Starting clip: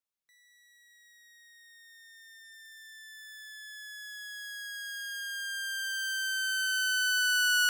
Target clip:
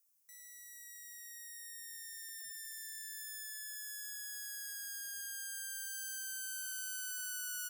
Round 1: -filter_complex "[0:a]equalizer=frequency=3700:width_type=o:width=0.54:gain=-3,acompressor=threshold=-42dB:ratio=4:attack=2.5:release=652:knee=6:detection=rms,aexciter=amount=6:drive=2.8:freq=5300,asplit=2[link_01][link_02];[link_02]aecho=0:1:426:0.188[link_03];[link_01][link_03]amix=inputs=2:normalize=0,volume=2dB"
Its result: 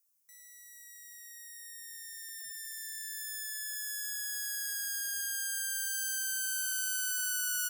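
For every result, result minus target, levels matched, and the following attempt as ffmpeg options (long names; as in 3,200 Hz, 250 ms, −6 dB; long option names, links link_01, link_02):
downward compressor: peak gain reduction −8 dB; echo-to-direct +7 dB
-filter_complex "[0:a]equalizer=frequency=3700:width_type=o:width=0.54:gain=-3,acompressor=threshold=-53dB:ratio=4:attack=2.5:release=652:knee=6:detection=rms,aexciter=amount=6:drive=2.8:freq=5300,asplit=2[link_01][link_02];[link_02]aecho=0:1:426:0.188[link_03];[link_01][link_03]amix=inputs=2:normalize=0,volume=2dB"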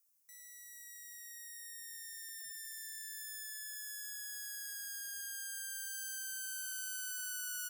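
echo-to-direct +7 dB
-filter_complex "[0:a]equalizer=frequency=3700:width_type=o:width=0.54:gain=-3,acompressor=threshold=-53dB:ratio=4:attack=2.5:release=652:knee=6:detection=rms,aexciter=amount=6:drive=2.8:freq=5300,asplit=2[link_01][link_02];[link_02]aecho=0:1:426:0.0841[link_03];[link_01][link_03]amix=inputs=2:normalize=0,volume=2dB"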